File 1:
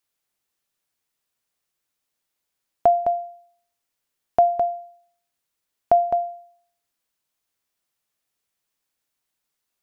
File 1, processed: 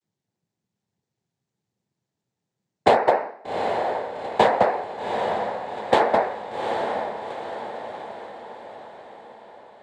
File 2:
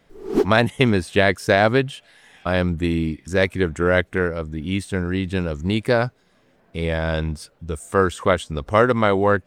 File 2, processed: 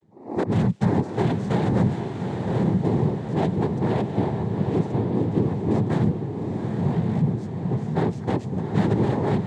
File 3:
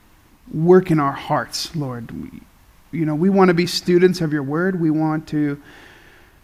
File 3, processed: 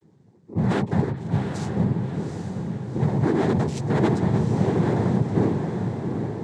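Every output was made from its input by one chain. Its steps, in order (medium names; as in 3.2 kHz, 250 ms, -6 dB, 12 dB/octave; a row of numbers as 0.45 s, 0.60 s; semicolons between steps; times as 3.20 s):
peaking EQ 1.4 kHz -11.5 dB 2.6 oct; vocoder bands 8, saw 133 Hz; hard clipper -22 dBFS; noise-vocoded speech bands 6; on a send: echo that smears into a reverb 791 ms, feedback 52%, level -5.5 dB; on the sum: normalise loudness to -24 LUFS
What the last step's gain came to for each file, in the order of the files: +12.5 dB, +4.0 dB, +2.5 dB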